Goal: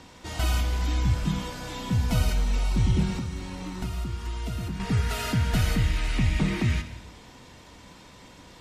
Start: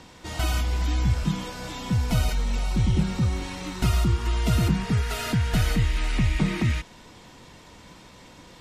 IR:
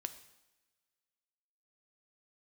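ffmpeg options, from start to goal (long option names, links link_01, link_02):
-filter_complex "[0:a]asettb=1/sr,asplit=3[link_01][link_02][link_03];[link_01]atrim=end=3.184[link_04];[link_02]atrim=start=3.18:end=4.8,asetpts=PTS-STARTPTS,afade=type=in:duration=0.004:curve=qsin,afade=type=out:start_time=1.616:duration=0.004:curve=qsin,acrossover=split=1100|3500[link_05][link_06][link_07];[link_05]acompressor=threshold=-30dB:ratio=4[link_08];[link_06]acompressor=threshold=-48dB:ratio=4[link_09];[link_07]acompressor=threshold=-49dB:ratio=4[link_10];[link_08][link_09][link_10]amix=inputs=3:normalize=0[link_11];[link_03]atrim=start=4.796[link_12];[link_04][link_11]acrossfade=duration=0.004:curve1=hsin:curve2=qsin[link_13];[link_13][link_12]acrossfade=duration=0.004:curve1=qsin:curve2=hsin[link_14];[1:a]atrim=start_sample=2205,asetrate=34398,aresample=44100[link_15];[link_14][link_15]afir=irnorm=-1:irlink=0"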